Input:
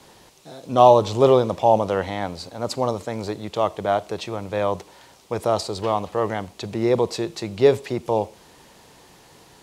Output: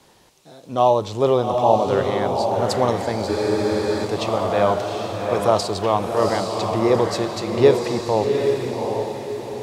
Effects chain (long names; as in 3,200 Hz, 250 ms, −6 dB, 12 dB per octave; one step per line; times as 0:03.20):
speech leveller within 4 dB 2 s
feedback delay with all-pass diffusion 777 ms, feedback 42%, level −3 dB
frozen spectrum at 0:03.30, 0.75 s